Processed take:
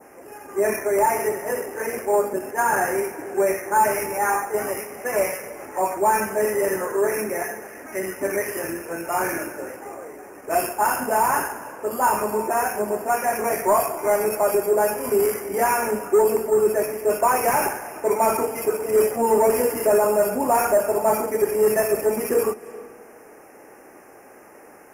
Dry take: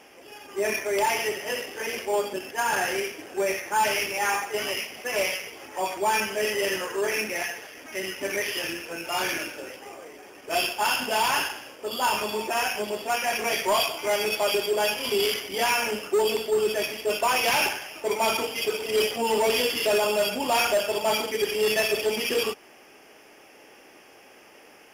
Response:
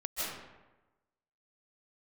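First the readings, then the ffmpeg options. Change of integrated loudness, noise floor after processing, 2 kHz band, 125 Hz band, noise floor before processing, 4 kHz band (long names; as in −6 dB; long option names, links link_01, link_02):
+3.5 dB, −46 dBFS, −1.5 dB, +6.0 dB, −52 dBFS, −15.0 dB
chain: -filter_complex "[0:a]asuperstop=centerf=3700:order=4:qfactor=0.65,aeval=exprs='0.168*(cos(1*acos(clip(val(0)/0.168,-1,1)))-cos(1*PI/2))+0.00119*(cos(5*acos(clip(val(0)/0.168,-1,1)))-cos(5*PI/2))':channel_layout=same,asplit=2[link_01][link_02];[1:a]atrim=start_sample=2205,asetrate=26901,aresample=44100[link_03];[link_02][link_03]afir=irnorm=-1:irlink=0,volume=-25.5dB[link_04];[link_01][link_04]amix=inputs=2:normalize=0,adynamicequalizer=threshold=0.00501:dfrequency=3100:dqfactor=0.84:tfrequency=3100:tqfactor=0.84:attack=5:release=100:ratio=0.375:range=3:mode=cutabove:tftype=bell,volume=5.5dB"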